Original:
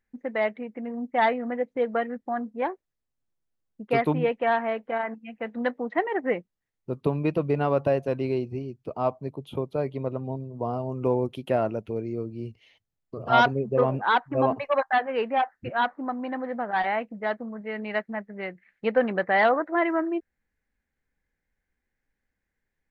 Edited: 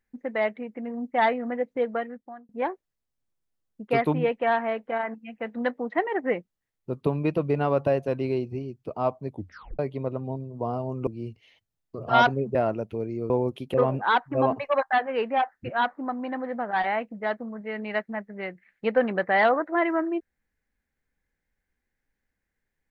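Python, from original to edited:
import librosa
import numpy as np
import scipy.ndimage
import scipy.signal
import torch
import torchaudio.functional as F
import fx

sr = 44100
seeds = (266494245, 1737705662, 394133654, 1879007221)

y = fx.edit(x, sr, fx.fade_out_span(start_s=1.79, length_s=0.7),
    fx.tape_stop(start_s=9.29, length_s=0.5),
    fx.swap(start_s=11.07, length_s=0.44, other_s=12.26, other_length_s=1.48), tone=tone)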